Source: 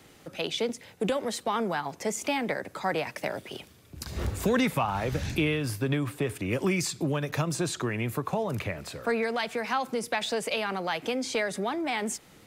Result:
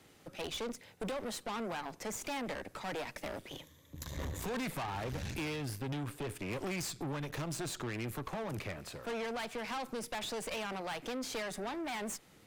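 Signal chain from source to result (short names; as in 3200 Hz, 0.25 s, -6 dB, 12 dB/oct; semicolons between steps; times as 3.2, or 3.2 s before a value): 3.49–4.4 ripple EQ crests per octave 1.1, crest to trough 11 dB; tube stage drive 33 dB, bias 0.8; gain -2 dB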